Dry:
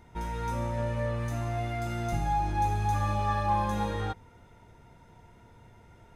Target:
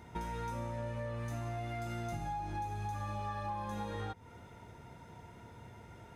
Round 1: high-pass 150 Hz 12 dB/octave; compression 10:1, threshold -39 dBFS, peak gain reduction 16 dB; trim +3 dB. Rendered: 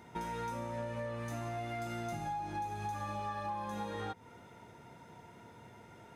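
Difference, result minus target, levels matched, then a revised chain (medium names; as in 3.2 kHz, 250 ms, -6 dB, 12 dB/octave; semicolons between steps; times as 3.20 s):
125 Hz band -4.0 dB
high-pass 66 Hz 12 dB/octave; compression 10:1, threshold -39 dBFS, peak gain reduction 16.5 dB; trim +3 dB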